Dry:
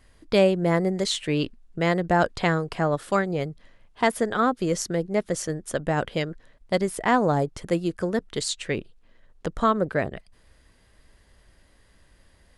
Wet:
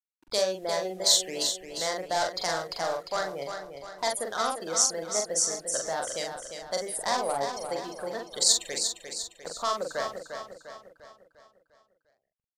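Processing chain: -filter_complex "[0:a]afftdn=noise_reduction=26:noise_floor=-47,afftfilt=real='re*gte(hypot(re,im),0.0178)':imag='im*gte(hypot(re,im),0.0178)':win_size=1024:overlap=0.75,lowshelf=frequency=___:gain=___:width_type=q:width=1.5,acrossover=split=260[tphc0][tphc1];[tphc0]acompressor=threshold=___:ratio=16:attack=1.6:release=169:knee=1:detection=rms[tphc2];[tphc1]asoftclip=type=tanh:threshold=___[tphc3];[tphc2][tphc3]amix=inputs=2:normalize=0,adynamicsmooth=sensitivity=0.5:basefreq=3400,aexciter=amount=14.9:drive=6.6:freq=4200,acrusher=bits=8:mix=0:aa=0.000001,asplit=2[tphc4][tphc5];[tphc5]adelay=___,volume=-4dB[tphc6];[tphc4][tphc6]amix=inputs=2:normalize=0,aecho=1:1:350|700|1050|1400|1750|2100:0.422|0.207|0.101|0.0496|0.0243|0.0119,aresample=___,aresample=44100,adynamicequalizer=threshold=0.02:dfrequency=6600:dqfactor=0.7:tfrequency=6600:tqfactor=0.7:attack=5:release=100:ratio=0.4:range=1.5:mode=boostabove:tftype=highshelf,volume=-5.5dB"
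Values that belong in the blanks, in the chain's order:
470, -6.5, -48dB, -15.5dB, 43, 32000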